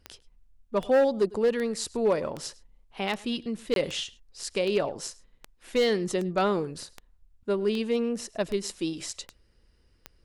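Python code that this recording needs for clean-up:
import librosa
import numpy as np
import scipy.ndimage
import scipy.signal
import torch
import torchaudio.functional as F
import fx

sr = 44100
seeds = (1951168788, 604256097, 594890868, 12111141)

y = fx.fix_declip(x, sr, threshold_db=-17.0)
y = fx.fix_declick_ar(y, sr, threshold=10.0)
y = fx.fix_interpolate(y, sr, at_s=(3.74,), length_ms=22.0)
y = fx.fix_echo_inverse(y, sr, delay_ms=104, level_db=-22.0)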